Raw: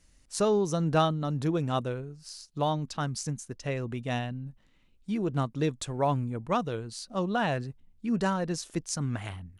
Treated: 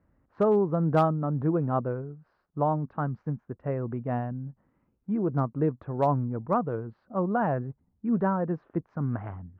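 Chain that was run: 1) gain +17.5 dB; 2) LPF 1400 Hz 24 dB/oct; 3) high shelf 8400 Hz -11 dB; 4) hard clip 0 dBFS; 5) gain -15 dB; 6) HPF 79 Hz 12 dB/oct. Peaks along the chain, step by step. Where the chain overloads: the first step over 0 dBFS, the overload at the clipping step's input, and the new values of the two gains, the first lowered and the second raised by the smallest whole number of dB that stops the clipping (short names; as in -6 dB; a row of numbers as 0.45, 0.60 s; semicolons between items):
+5.5, +3.5, +3.5, 0.0, -15.0, -12.5 dBFS; step 1, 3.5 dB; step 1 +13.5 dB, step 5 -11 dB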